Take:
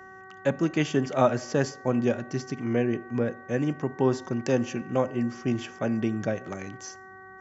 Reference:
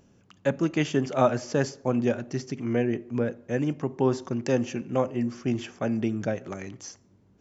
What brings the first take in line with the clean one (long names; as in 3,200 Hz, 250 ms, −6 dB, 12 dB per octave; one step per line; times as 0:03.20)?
hum removal 379 Hz, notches 5